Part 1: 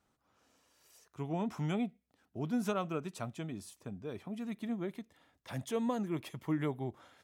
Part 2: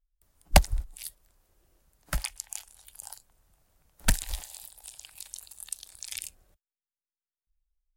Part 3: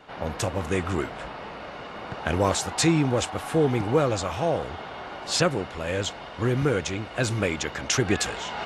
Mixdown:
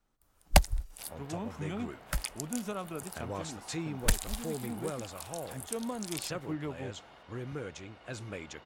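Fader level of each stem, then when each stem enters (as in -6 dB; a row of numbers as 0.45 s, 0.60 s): -3.5 dB, -3.0 dB, -16.0 dB; 0.00 s, 0.00 s, 0.90 s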